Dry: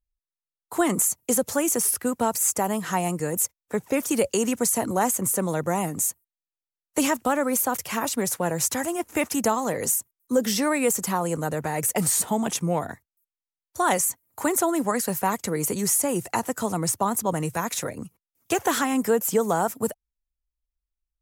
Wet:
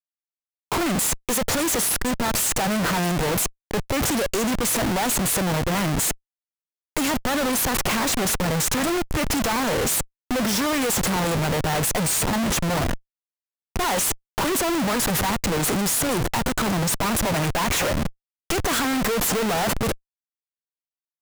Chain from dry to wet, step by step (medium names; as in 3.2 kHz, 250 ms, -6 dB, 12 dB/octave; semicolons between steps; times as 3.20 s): time-frequency box 17.14–18.42 s, 530–3500 Hz +8 dB; Schmitt trigger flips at -34 dBFS; trim +3.5 dB